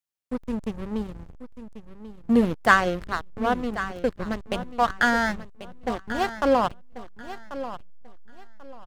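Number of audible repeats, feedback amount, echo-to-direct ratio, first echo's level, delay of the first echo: 2, 24%, -12.5 dB, -13.0 dB, 1089 ms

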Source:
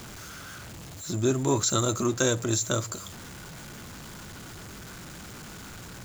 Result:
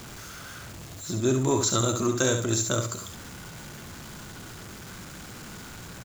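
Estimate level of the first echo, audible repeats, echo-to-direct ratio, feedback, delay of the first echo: -7.0 dB, 2, -6.5 dB, 24%, 69 ms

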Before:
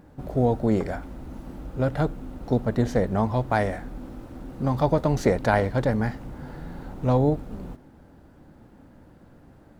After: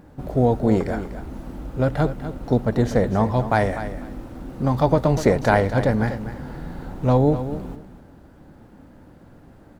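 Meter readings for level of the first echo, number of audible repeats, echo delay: -11.5 dB, 2, 246 ms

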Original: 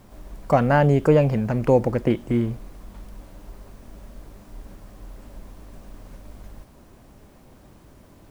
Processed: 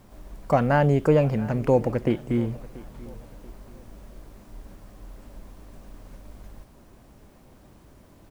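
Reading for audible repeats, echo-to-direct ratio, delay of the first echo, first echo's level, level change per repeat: 2, -20.0 dB, 684 ms, -20.5 dB, -8.0 dB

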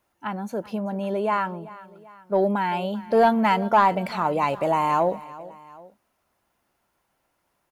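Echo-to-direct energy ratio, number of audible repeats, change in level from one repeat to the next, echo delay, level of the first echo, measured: -17.5 dB, 2, -5.5 dB, 388 ms, -18.5 dB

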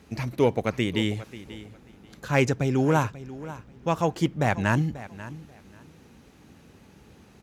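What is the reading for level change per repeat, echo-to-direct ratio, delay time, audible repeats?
-14.0 dB, -16.0 dB, 538 ms, 2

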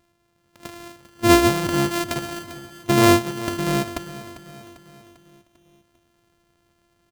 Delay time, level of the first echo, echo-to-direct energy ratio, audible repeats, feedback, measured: 397 ms, -14.5 dB, -13.0 dB, 4, 52%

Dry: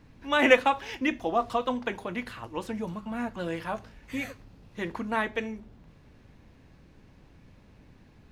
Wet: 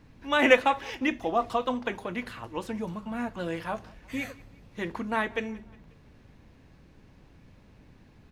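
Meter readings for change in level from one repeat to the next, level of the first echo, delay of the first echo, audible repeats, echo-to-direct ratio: -6.0 dB, -24.0 dB, 179 ms, 2, -23.0 dB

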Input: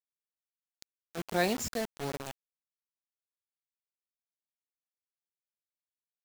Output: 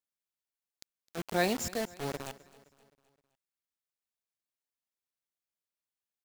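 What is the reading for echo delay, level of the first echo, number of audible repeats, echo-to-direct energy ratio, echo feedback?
260 ms, -20.5 dB, 3, -19.5 dB, 50%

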